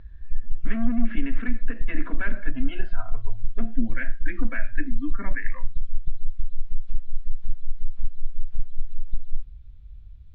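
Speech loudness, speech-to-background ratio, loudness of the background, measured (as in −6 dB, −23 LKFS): −33.0 LKFS, 4.5 dB, −37.5 LKFS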